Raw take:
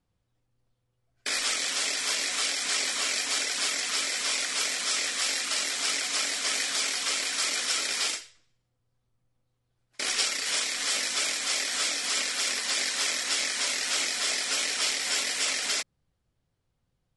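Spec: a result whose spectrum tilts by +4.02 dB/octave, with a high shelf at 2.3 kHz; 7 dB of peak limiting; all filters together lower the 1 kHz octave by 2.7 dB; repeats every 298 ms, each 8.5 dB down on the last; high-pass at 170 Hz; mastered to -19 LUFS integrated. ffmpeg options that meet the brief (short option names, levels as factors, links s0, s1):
-af "highpass=170,equalizer=f=1000:t=o:g=-5.5,highshelf=f=2300:g=5.5,alimiter=limit=0.158:level=0:latency=1,aecho=1:1:298|596|894|1192:0.376|0.143|0.0543|0.0206,volume=1.78"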